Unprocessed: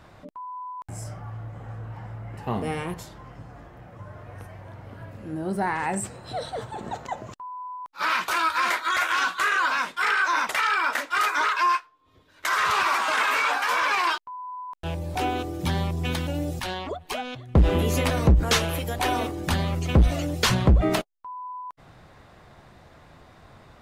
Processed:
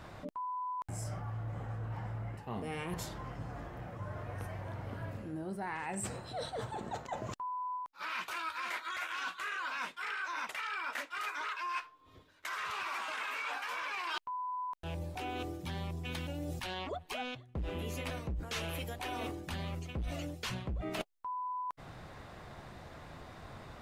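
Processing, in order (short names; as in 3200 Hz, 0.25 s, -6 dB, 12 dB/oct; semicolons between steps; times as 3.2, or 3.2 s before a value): dynamic EQ 2600 Hz, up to +5 dB, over -42 dBFS, Q 2; reverse; compressor 12:1, threshold -37 dBFS, peak gain reduction 22.5 dB; reverse; gain +1 dB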